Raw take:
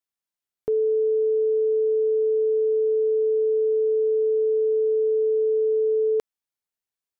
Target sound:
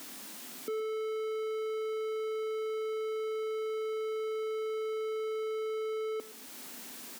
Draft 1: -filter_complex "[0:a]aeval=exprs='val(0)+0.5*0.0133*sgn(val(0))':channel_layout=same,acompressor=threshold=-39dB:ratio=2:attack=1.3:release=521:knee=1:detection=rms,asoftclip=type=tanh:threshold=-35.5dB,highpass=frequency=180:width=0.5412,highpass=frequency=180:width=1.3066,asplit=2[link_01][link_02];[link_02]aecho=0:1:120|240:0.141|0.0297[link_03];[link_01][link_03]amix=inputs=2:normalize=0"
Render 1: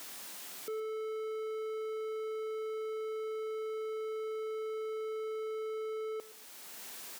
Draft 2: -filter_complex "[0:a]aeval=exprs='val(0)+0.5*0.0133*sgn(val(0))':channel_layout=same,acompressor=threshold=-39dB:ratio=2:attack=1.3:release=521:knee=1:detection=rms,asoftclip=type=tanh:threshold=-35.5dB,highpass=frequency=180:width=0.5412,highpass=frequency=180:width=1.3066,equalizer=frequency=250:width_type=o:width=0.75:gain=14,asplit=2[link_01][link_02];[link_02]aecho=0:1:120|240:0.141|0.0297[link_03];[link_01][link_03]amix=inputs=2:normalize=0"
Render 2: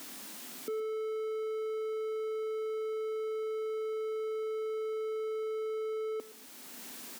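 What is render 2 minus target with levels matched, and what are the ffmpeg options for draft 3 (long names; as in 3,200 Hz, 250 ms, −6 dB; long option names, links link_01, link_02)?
downward compressor: peak gain reduction +4 dB
-filter_complex "[0:a]aeval=exprs='val(0)+0.5*0.0133*sgn(val(0))':channel_layout=same,acompressor=threshold=-31.5dB:ratio=2:attack=1.3:release=521:knee=1:detection=rms,asoftclip=type=tanh:threshold=-35.5dB,highpass=frequency=180:width=0.5412,highpass=frequency=180:width=1.3066,equalizer=frequency=250:width_type=o:width=0.75:gain=14,asplit=2[link_01][link_02];[link_02]aecho=0:1:120|240:0.141|0.0297[link_03];[link_01][link_03]amix=inputs=2:normalize=0"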